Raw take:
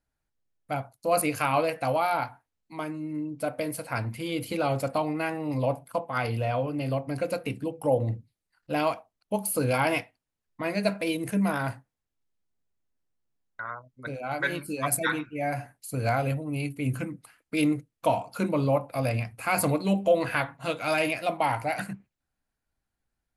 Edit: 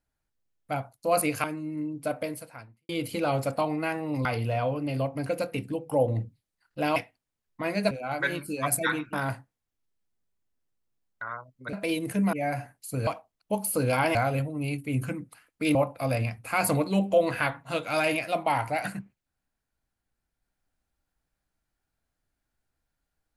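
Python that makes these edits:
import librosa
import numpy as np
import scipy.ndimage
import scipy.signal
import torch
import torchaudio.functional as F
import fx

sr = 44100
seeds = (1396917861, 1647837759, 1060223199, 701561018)

y = fx.edit(x, sr, fx.cut(start_s=1.44, length_s=1.37),
    fx.fade_out_span(start_s=3.56, length_s=0.7, curve='qua'),
    fx.cut(start_s=5.62, length_s=0.55),
    fx.move(start_s=8.88, length_s=1.08, to_s=16.07),
    fx.swap(start_s=10.91, length_s=0.6, other_s=14.11, other_length_s=1.22),
    fx.cut(start_s=17.67, length_s=1.02), tone=tone)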